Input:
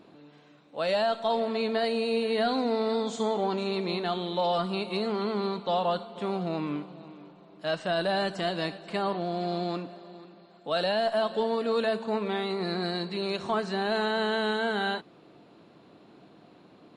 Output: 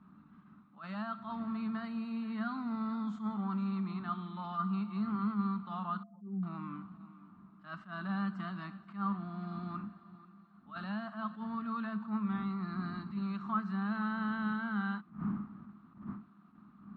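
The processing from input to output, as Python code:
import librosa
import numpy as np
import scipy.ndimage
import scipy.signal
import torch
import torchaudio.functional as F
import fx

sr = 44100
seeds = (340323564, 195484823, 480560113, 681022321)

y = fx.spec_expand(x, sr, power=3.6, at=(6.03, 6.43))
y = fx.dmg_wind(y, sr, seeds[0], corner_hz=320.0, level_db=-43.0)
y = fx.double_bandpass(y, sr, hz=500.0, octaves=2.6)
y = fx.attack_slew(y, sr, db_per_s=170.0)
y = y * librosa.db_to_amplitude(3.0)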